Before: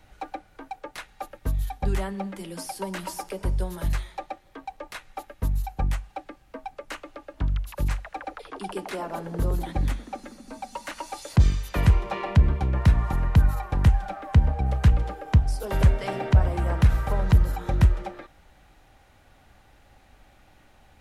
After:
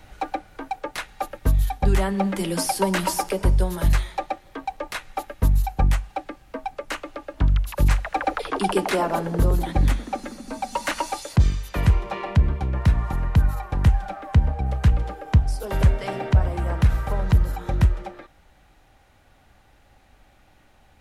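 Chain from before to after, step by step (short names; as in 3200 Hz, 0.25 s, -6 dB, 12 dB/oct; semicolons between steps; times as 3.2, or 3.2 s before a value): vocal rider 0.5 s; gain +2.5 dB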